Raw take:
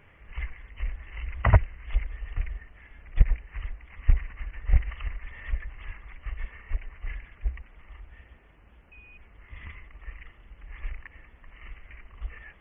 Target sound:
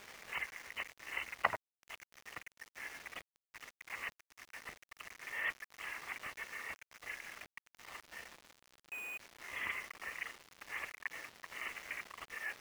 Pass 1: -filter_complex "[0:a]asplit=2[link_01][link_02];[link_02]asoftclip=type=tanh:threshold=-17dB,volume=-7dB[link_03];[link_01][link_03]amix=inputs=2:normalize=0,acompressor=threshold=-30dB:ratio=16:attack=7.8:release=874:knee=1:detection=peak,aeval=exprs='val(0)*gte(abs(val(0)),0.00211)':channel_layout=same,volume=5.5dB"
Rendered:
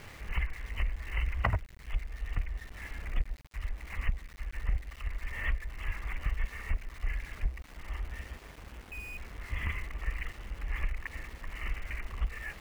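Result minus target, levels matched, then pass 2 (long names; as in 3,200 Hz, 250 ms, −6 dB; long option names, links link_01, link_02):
500 Hz band −2.5 dB
-filter_complex "[0:a]asplit=2[link_01][link_02];[link_02]asoftclip=type=tanh:threshold=-17dB,volume=-7dB[link_03];[link_01][link_03]amix=inputs=2:normalize=0,acompressor=threshold=-30dB:ratio=16:attack=7.8:release=874:knee=1:detection=peak,highpass=450,aeval=exprs='val(0)*gte(abs(val(0)),0.00211)':channel_layout=same,volume=5.5dB"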